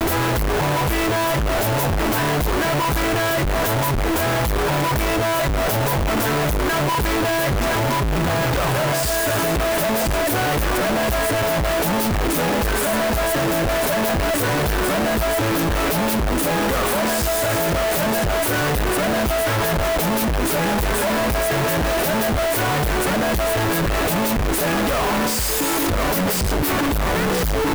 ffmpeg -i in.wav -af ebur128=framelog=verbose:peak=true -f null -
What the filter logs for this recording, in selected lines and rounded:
Integrated loudness:
  I:         -19.6 LUFS
  Threshold: -29.6 LUFS
Loudness range:
  LRA:         0.3 LU
  Threshold: -39.6 LUFS
  LRA low:   -19.8 LUFS
  LRA high:  -19.5 LUFS
True peak:
  Peak:      -13.6 dBFS